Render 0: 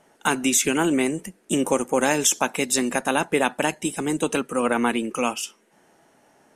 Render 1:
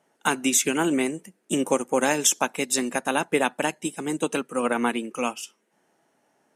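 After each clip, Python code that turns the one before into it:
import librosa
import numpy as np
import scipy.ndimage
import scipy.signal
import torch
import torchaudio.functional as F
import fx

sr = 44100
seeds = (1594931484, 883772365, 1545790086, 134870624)

y = scipy.signal.sosfilt(scipy.signal.butter(2, 120.0, 'highpass', fs=sr, output='sos'), x)
y = fx.upward_expand(y, sr, threshold_db=-35.0, expansion=1.5)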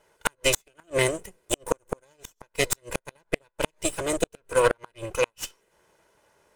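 y = fx.lower_of_two(x, sr, delay_ms=2.0)
y = fx.cheby_harmonics(y, sr, harmonics=(3,), levels_db=(-25,), full_scale_db=-7.0)
y = fx.gate_flip(y, sr, shuts_db=-15.0, range_db=-42)
y = F.gain(torch.from_numpy(y), 7.0).numpy()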